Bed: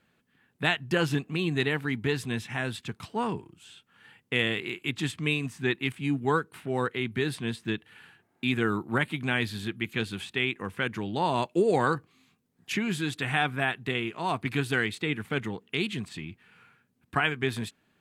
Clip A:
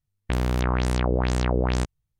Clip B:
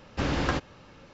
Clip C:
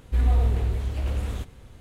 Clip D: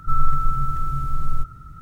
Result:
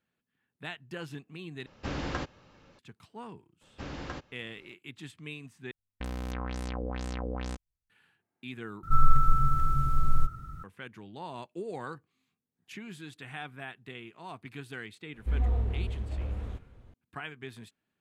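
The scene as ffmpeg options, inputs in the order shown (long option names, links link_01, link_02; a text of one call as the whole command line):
ffmpeg -i bed.wav -i cue0.wav -i cue1.wav -i cue2.wav -i cue3.wav -filter_complex "[2:a]asplit=2[link_01][link_02];[0:a]volume=-14.5dB[link_03];[1:a]aecho=1:1:3.9:0.58[link_04];[3:a]lowpass=frequency=1500:poles=1[link_05];[link_03]asplit=4[link_06][link_07][link_08][link_09];[link_06]atrim=end=1.664[link_10];[link_01]atrim=end=1.13,asetpts=PTS-STARTPTS,volume=-7dB[link_11];[link_07]atrim=start=2.786:end=5.714[link_12];[link_04]atrim=end=2.19,asetpts=PTS-STARTPTS,volume=-13dB[link_13];[link_08]atrim=start=7.896:end=8.834[link_14];[4:a]atrim=end=1.81,asetpts=PTS-STARTPTS,volume=-2dB[link_15];[link_09]atrim=start=10.636[link_16];[link_02]atrim=end=1.13,asetpts=PTS-STARTPTS,volume=-12.5dB,afade=type=in:duration=0.004:curve=hsin,afade=type=out:start_time=1.126:duration=0.004:curve=hsin,adelay=159201S[link_17];[link_05]atrim=end=1.8,asetpts=PTS-STARTPTS,volume=-7dB,afade=type=in:duration=0.004:curve=hsin,afade=type=out:start_time=1.796:duration=0.004:curve=hsin,adelay=15140[link_18];[link_10][link_11]acrossfade=duration=0.004:curve1=hsin:curve2=hsin[link_19];[link_19][link_12]acrossfade=duration=0.004:curve1=hsin:curve2=hsin[link_20];[link_20][link_13]acrossfade=duration=0.004:curve1=hsin:curve2=hsin[link_21];[link_21][link_14]acrossfade=duration=0.004:curve1=hsin:curve2=hsin[link_22];[link_22][link_15]acrossfade=duration=0.004:curve1=hsin:curve2=hsin[link_23];[link_23][link_16]acrossfade=duration=0.004:curve1=hsin:curve2=hsin[link_24];[link_24][link_17][link_18]amix=inputs=3:normalize=0" out.wav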